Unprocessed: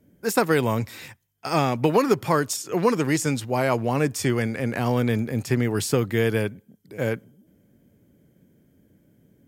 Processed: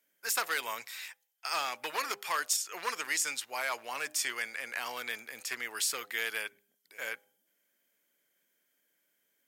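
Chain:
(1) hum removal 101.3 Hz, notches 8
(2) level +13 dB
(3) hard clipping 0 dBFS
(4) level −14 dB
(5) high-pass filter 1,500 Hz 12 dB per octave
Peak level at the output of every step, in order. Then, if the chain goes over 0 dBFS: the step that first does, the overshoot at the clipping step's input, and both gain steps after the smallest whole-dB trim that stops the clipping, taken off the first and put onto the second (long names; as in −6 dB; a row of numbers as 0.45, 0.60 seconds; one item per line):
−6.5, +6.5, 0.0, −14.0, −15.0 dBFS
step 2, 6.5 dB
step 2 +6 dB, step 4 −7 dB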